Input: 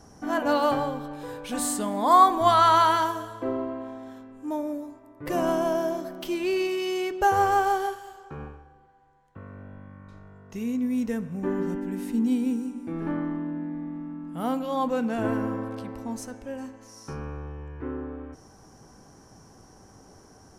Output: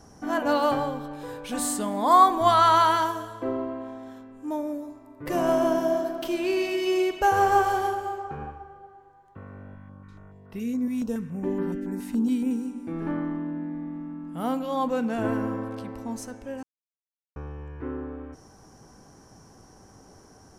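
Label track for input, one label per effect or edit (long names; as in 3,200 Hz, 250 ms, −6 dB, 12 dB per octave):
4.810000	7.720000	thrown reverb, RT60 2.8 s, DRR 5 dB
9.750000	12.510000	notch on a step sequencer 7.1 Hz 430–6,600 Hz
16.630000	17.360000	silence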